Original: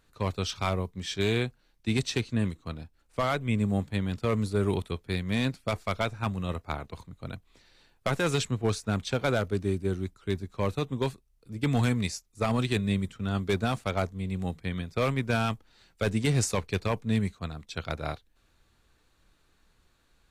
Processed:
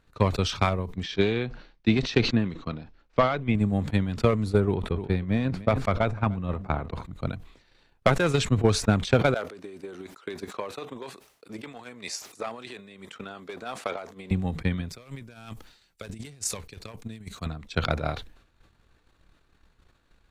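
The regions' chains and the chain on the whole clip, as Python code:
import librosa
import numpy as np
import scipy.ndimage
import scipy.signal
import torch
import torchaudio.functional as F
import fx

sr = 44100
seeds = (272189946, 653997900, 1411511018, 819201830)

y = fx.chain(x, sr, fx.lowpass(hz=5600.0, slope=24),
    fx.peak_eq(hz=81.0, db=-9.5, octaves=0.88), at=(1.03, 3.55))
y = fx.chain(y, sr, fx.high_shelf(hz=2900.0, db=-12.0),
    fx.echo_single(ms=302, db=-20.5),
    fx.sustainer(db_per_s=100.0), at=(4.6, 7.03))
y = fx.chain(y, sr, fx.over_compress(threshold_db=-33.0, ratio=-1.0),
    fx.highpass(hz=460.0, slope=12), at=(9.34, 14.31))
y = fx.chain(y, sr, fx.over_compress(threshold_db=-31.0, ratio=-0.5),
    fx.pre_emphasis(coefficient=0.8), at=(14.89, 17.46))
y = fx.high_shelf(y, sr, hz=5000.0, db=-10.5)
y = fx.transient(y, sr, attack_db=10, sustain_db=-3)
y = fx.sustainer(y, sr, db_per_s=97.0)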